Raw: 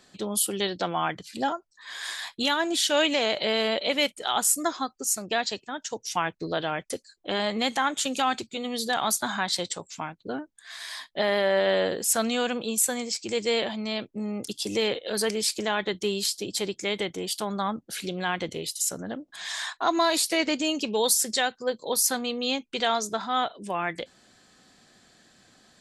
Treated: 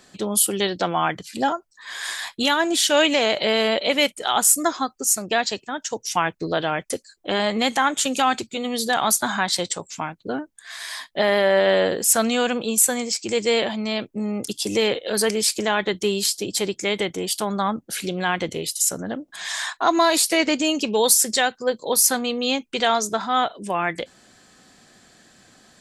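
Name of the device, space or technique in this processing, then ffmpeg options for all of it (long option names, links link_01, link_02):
exciter from parts: -filter_complex "[0:a]asplit=2[link_01][link_02];[link_02]highpass=frequency=3600:width=0.5412,highpass=frequency=3600:width=1.3066,asoftclip=type=tanh:threshold=-20dB,volume=-10dB[link_03];[link_01][link_03]amix=inputs=2:normalize=0,volume=5.5dB"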